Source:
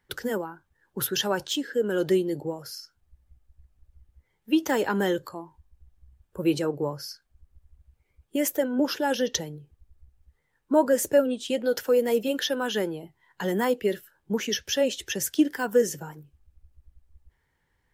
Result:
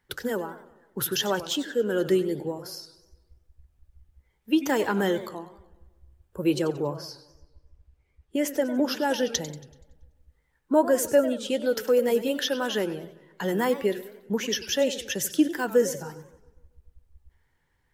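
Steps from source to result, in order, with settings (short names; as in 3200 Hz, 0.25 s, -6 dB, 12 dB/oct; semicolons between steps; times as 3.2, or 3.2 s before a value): 6.98–8.62 high shelf 9400 Hz -11.5 dB; darkening echo 0.137 s, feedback 53%, low-pass 3500 Hz, level -22.5 dB; warbling echo 95 ms, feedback 45%, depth 207 cents, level -14.5 dB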